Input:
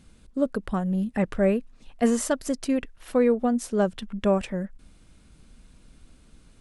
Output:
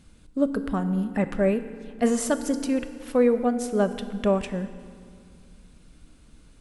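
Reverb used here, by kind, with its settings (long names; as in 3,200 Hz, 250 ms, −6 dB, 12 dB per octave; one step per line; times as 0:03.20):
feedback delay network reverb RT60 2.2 s, low-frequency decay 1.5×, high-frequency decay 0.75×, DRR 9.5 dB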